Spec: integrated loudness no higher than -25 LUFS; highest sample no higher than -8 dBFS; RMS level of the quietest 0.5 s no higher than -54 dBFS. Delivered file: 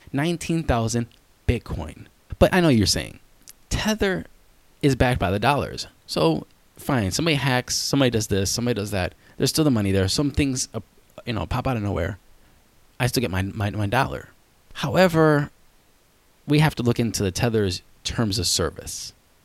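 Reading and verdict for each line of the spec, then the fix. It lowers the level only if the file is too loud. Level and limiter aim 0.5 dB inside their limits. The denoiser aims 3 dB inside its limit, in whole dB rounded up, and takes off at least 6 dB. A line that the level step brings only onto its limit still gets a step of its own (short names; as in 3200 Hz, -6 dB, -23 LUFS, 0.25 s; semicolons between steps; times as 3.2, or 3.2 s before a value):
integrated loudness -22.5 LUFS: fail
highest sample -2.5 dBFS: fail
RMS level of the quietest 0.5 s -58 dBFS: OK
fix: gain -3 dB; limiter -8.5 dBFS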